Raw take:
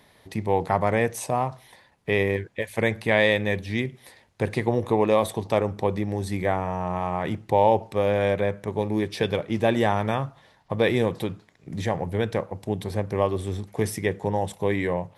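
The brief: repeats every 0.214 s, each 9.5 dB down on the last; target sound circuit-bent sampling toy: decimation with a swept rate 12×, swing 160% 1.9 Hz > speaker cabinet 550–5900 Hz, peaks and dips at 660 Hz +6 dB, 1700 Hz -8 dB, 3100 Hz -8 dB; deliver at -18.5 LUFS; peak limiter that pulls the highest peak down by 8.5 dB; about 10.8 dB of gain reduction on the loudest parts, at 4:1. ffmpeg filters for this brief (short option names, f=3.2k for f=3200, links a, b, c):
-af "acompressor=threshold=-28dB:ratio=4,alimiter=limit=-22.5dB:level=0:latency=1,aecho=1:1:214|428|642|856:0.335|0.111|0.0365|0.012,acrusher=samples=12:mix=1:aa=0.000001:lfo=1:lforange=19.2:lforate=1.9,highpass=550,equalizer=f=660:t=q:w=4:g=6,equalizer=f=1.7k:t=q:w=4:g=-8,equalizer=f=3.1k:t=q:w=4:g=-8,lowpass=f=5.9k:w=0.5412,lowpass=f=5.9k:w=1.3066,volume=20dB"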